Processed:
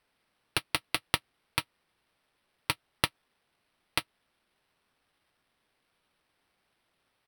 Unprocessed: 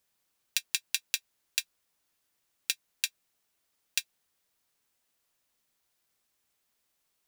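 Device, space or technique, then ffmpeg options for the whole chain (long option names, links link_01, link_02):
crushed at another speed: -af "asetrate=35280,aresample=44100,acrusher=samples=8:mix=1:aa=0.000001,asetrate=55125,aresample=44100,volume=1dB"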